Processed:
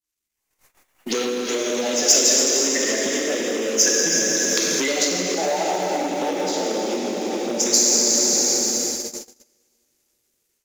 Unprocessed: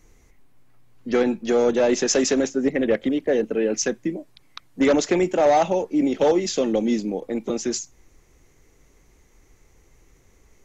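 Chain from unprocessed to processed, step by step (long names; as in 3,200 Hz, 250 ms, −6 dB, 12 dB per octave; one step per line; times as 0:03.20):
spectral magnitudes quantised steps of 30 dB
0:05.06–0:07.60: low-pass filter 2,100 Hz 6 dB per octave
dense smooth reverb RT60 4.5 s, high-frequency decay 0.85×, DRR −4.5 dB
downward compressor 12 to 1, threshold −26 dBFS, peak gain reduction 17.5 dB
leveller curve on the samples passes 1
noise gate −33 dBFS, range −32 dB
automatic gain control gain up to 13 dB
spectral tilt +4 dB per octave
level −5.5 dB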